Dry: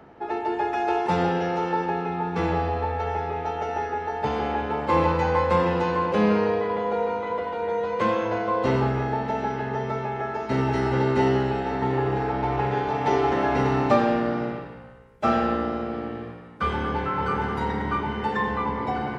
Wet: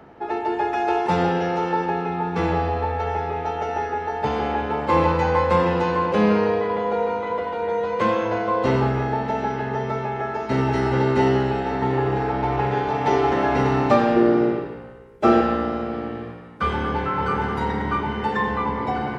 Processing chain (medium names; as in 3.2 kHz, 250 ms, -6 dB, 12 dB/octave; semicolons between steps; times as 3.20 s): 14.16–15.41 s: peaking EQ 370 Hz +13 dB 0.59 oct; trim +2.5 dB